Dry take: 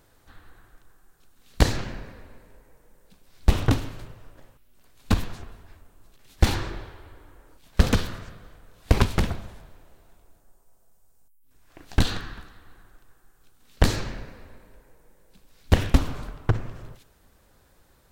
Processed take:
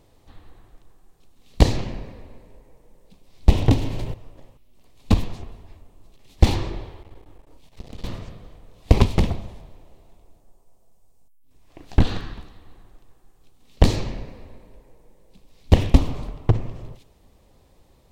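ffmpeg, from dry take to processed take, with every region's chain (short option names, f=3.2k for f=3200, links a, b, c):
-filter_complex "[0:a]asettb=1/sr,asplit=3[a][b][c];[a]atrim=end=3.494[d];[b]atrim=start=3.49:end=4.14,asetpts=PTS-STARTPTS,afade=t=in:d=0.004:c=qsin,afade=t=out:st=0.646:d=0.004:c=qsin,bandreject=f=1.2k:w=7.3,acompressor=mode=upward:threshold=-20dB:ratio=2.5:attack=3.2:release=140:knee=2.83:detection=peak[e];[c]atrim=start=4.136[f];[d][e]acrossfade=d=0.004:c1=hsin:c2=qsin[g];[g][f]acrossfade=d=0.004:c1=qsin:c2=hsin,asettb=1/sr,asplit=3[h][i][j];[h]atrim=end=7.034[k];[i]atrim=start=7.03:end=8.04,asetpts=PTS-STARTPTS,afade=t=in:d=0.004:c=qsin,afade=t=out:st=1.006:d=0.004:c=qsin,acompressor=threshold=-35dB:ratio=5:attack=3.2:release=140:knee=1:detection=peak,aeval=exprs='max(val(0),0)':c=same,asplit=2[l][m];[m]adelay=35,volume=-11dB[n];[l][n]amix=inputs=2:normalize=0,atrim=end_sample=44541[o];[j]atrim=start=8.036[p];[k][o]acrossfade=d=0.004:c1=hsin:c2=qsin[q];[q][p]acrossfade=d=0.004:c1=qsin:c2=hsin,asettb=1/sr,asplit=3[r][s][t];[r]atrim=end=11.834[u];[s]atrim=start=11.83:end=12.34,asetpts=PTS-STARTPTS,afade=t=in:d=0.004:c=qsin,afade=t=out:st=0.506:d=0.004:c=qsin,acrossover=split=2600[v][w];[w]acompressor=threshold=-37dB:ratio=4:attack=1:release=60[x];[v][x]amix=inputs=2:normalize=0,equalizer=f=1.5k:w=3.4:g=6[y];[t]atrim=start=12.336[z];[u][y]acrossfade=d=0.004:c1=hsin:c2=qsin[aa];[aa][z]acrossfade=d=0.004:c1=qsin:c2=hsin,lowpass=f=3.7k:p=1,equalizer=f=1.5k:t=o:w=0.58:g=-14.5,volume=4.5dB"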